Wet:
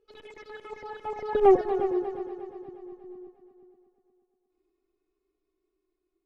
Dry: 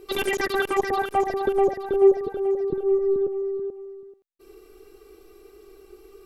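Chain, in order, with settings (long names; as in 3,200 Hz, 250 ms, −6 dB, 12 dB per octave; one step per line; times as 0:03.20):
source passing by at 0:01.48, 29 m/s, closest 2 metres
high-frequency loss of the air 100 metres
on a send: echo machine with several playback heads 119 ms, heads second and third, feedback 48%, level −11.5 dB
on the sum: level +3.5 dB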